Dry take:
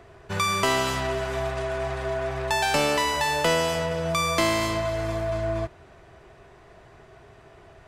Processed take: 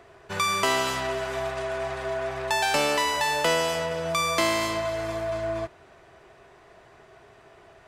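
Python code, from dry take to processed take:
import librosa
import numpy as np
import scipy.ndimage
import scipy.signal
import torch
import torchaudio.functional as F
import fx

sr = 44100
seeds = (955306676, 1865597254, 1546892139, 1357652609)

y = fx.low_shelf(x, sr, hz=190.0, db=-10.5)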